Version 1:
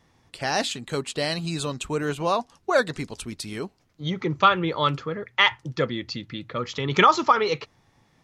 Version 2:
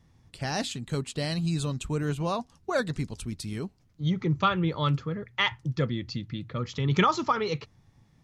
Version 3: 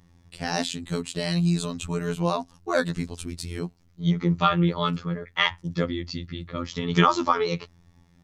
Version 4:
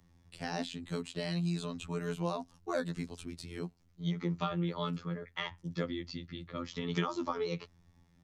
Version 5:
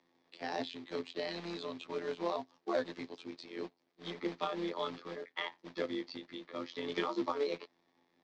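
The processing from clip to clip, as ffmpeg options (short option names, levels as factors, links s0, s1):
-af "bass=f=250:g=13,treble=f=4000:g=3,volume=0.422"
-af "afftfilt=real='hypot(re,im)*cos(PI*b)':imag='0':win_size=2048:overlap=0.75,volume=2.11"
-filter_complex "[0:a]acrossover=split=130|630|4600[s0][s1][s2][s3];[s0]acompressor=threshold=0.00562:ratio=4[s4];[s1]acompressor=threshold=0.0708:ratio=4[s5];[s2]acompressor=threshold=0.0316:ratio=4[s6];[s3]acompressor=threshold=0.00562:ratio=4[s7];[s4][s5][s6][s7]amix=inputs=4:normalize=0,volume=0.422"
-af "acrusher=bits=3:mode=log:mix=0:aa=0.000001,highpass=f=300:w=0.5412,highpass=f=300:w=1.3066,equalizer=f=300:t=q:w=4:g=5,equalizer=f=1400:t=q:w=4:g=-6,equalizer=f=2800:t=q:w=4:g=-5,lowpass=f=4600:w=0.5412,lowpass=f=4600:w=1.3066,tremolo=f=140:d=0.462,volume=1.41"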